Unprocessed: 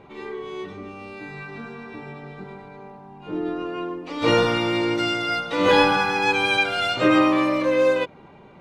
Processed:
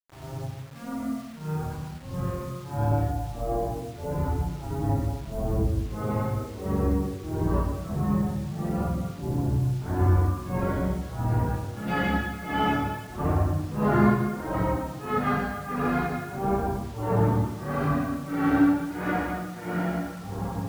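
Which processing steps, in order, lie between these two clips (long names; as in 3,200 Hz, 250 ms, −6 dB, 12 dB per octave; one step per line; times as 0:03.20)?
camcorder AGC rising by 14 dB per second
reverb reduction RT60 0.58 s
feedback delay with all-pass diffusion 936 ms, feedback 58%, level −6 dB
granular cloud 258 ms, grains 3.7 per second, pitch spread up and down by 7 semitones
change of speed 0.416×
on a send at −4 dB: convolution reverb RT60 1.0 s, pre-delay 101 ms
on the sum: flanger 0.89 Hz, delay 0.5 ms, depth 8.8 ms, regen −46%
bit reduction 8 bits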